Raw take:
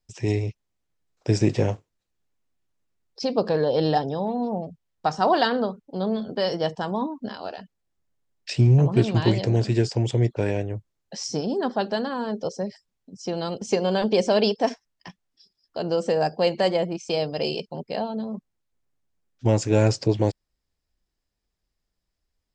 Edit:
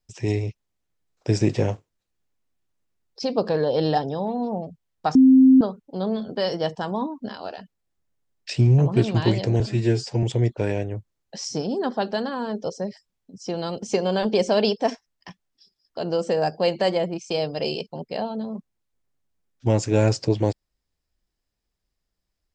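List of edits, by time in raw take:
5.15–5.61 s: bleep 262 Hz -9 dBFS
9.60–10.02 s: stretch 1.5×

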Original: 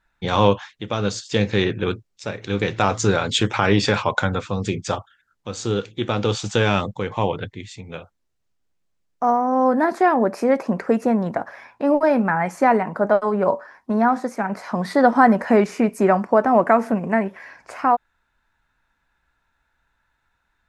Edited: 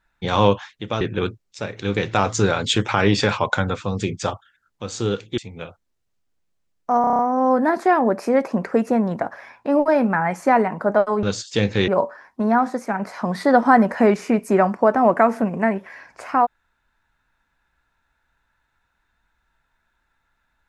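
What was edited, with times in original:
1.01–1.66 s: move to 13.38 s
6.03–7.71 s: delete
9.34 s: stutter 0.03 s, 7 plays

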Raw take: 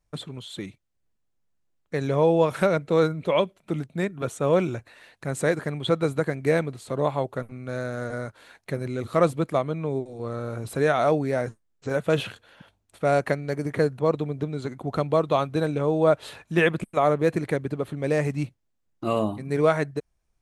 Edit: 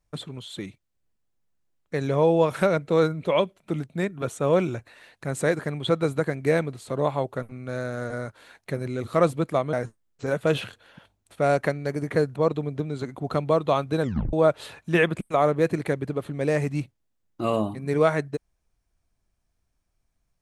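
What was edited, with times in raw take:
9.73–11.36 s: delete
15.65 s: tape stop 0.31 s

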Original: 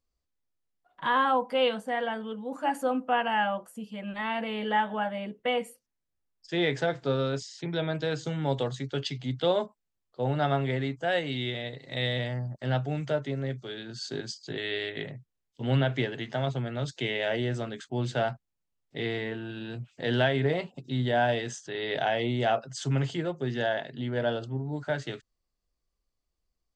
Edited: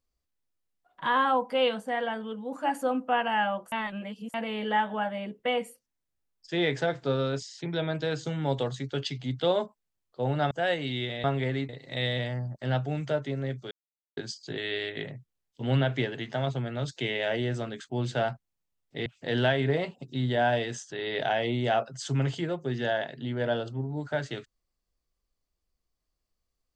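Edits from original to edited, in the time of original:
3.72–4.34 s: reverse
10.51–10.96 s: move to 11.69 s
13.71–14.17 s: mute
19.06–19.82 s: delete

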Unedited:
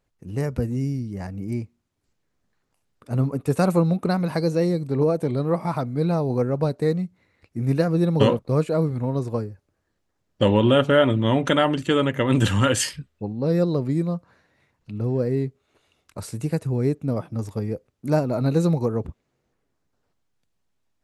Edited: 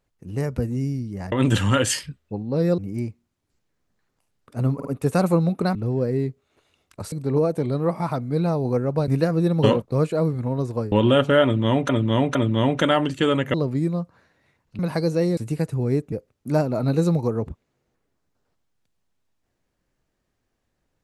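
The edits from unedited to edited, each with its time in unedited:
3.29 s: stutter 0.05 s, 3 plays
4.19–4.77 s: swap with 14.93–16.30 s
6.73–7.65 s: delete
9.49–10.52 s: delete
11.03–11.49 s: loop, 3 plays
12.22–13.68 s: move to 1.32 s
17.05–17.70 s: delete

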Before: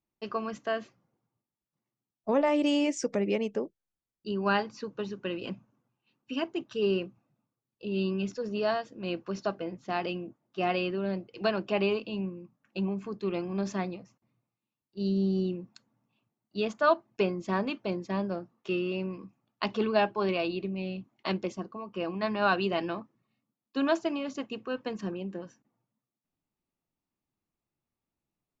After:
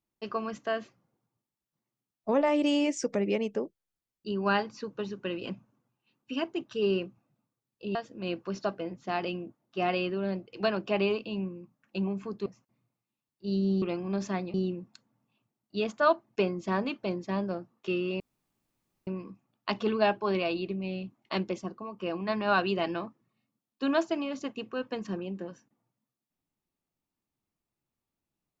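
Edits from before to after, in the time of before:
7.95–8.76 s: delete
13.27–13.99 s: move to 15.35 s
19.01 s: insert room tone 0.87 s

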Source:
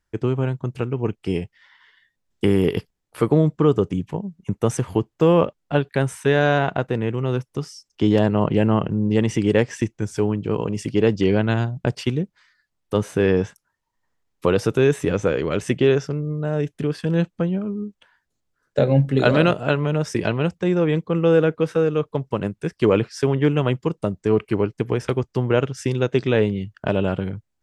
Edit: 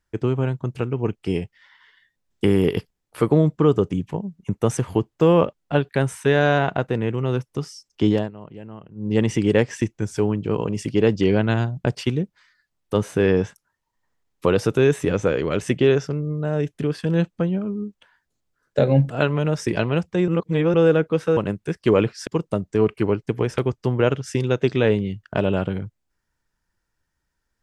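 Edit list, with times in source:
8.08–9.18 s: dip -20.5 dB, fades 0.23 s
19.10–19.58 s: delete
20.76–21.22 s: reverse
21.85–22.33 s: delete
23.23–23.78 s: delete

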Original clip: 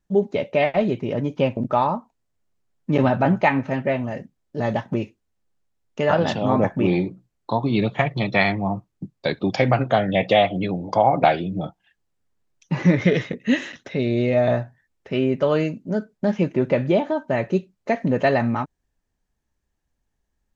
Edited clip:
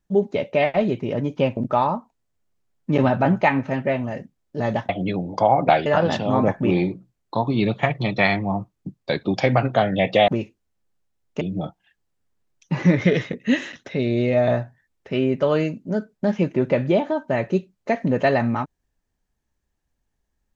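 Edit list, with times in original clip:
4.89–6.02 s: swap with 10.44–11.41 s

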